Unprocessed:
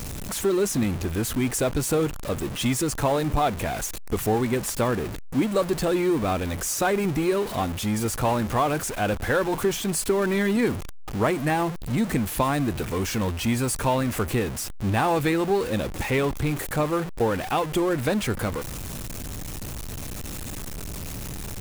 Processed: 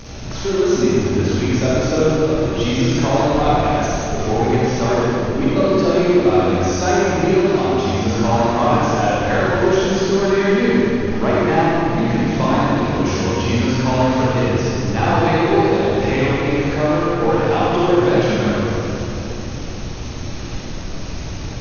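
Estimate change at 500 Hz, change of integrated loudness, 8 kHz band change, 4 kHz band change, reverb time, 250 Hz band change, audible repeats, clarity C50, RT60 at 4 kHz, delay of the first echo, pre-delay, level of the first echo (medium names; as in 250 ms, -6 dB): +9.0 dB, +8.5 dB, -0.5 dB, +7.0 dB, 3.0 s, +8.5 dB, no echo, -5.5 dB, 2.2 s, no echo, 32 ms, no echo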